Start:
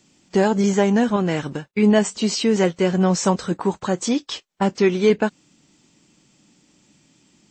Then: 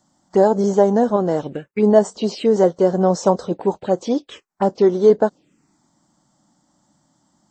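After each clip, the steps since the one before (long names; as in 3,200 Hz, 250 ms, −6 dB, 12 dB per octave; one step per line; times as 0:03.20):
parametric band 600 Hz +13 dB 1.9 octaves
phaser swept by the level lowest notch 430 Hz, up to 2,500 Hz, full sweep at −9 dBFS
level −5 dB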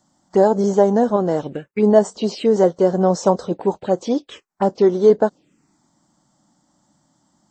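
no processing that can be heard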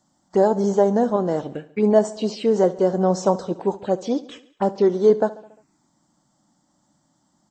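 repeating echo 70 ms, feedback 58%, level −18 dB
level −3 dB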